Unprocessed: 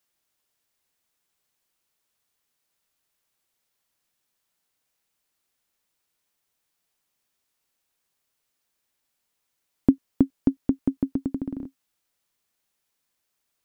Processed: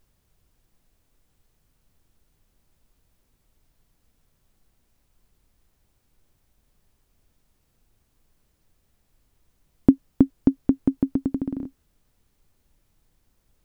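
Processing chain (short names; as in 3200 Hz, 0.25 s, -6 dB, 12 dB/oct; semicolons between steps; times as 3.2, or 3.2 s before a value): added noise brown -68 dBFS; gain +3 dB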